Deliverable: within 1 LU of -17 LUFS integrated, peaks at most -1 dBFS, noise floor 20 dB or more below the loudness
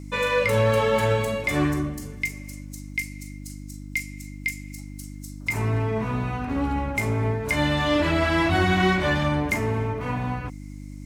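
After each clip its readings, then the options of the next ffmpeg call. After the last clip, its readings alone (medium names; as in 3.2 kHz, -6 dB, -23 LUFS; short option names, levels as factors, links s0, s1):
hum 50 Hz; highest harmonic 300 Hz; hum level -35 dBFS; loudness -24.5 LUFS; peak level -8.5 dBFS; loudness target -17.0 LUFS
-> -af "bandreject=f=50:t=h:w=4,bandreject=f=100:t=h:w=4,bandreject=f=150:t=h:w=4,bandreject=f=200:t=h:w=4,bandreject=f=250:t=h:w=4,bandreject=f=300:t=h:w=4"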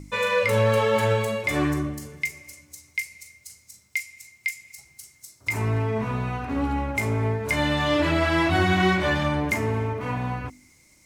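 hum not found; loudness -24.5 LUFS; peak level -9.0 dBFS; loudness target -17.0 LUFS
-> -af "volume=2.37"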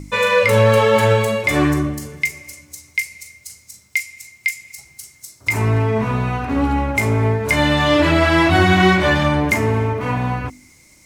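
loudness -17.0 LUFS; peak level -1.5 dBFS; noise floor -51 dBFS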